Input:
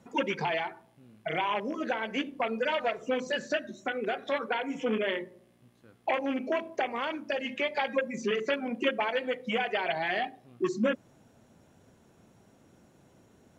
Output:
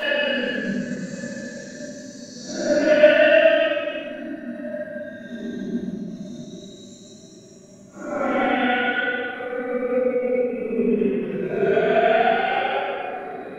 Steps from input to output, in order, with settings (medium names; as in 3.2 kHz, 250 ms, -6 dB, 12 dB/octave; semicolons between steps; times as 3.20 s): Paulstretch 16×, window 0.05 s, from 3.35 s; transient shaper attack +8 dB, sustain -10 dB; simulated room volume 480 m³, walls mixed, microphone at 6.8 m; trim -6 dB